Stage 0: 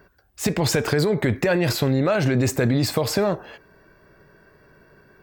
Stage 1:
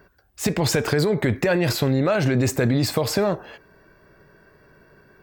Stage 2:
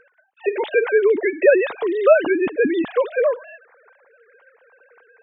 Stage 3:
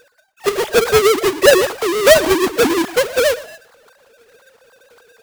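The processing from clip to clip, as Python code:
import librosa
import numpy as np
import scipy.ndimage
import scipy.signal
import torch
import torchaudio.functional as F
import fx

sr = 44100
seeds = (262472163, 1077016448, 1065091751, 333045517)

y1 = x
y2 = fx.sine_speech(y1, sr)
y2 = F.gain(torch.from_numpy(y2), 3.0).numpy()
y3 = fx.halfwave_hold(y2, sr)
y3 = y3 + 10.0 ** (-18.0 / 20.0) * np.pad(y3, (int(118 * sr / 1000.0), 0))[:len(y3)]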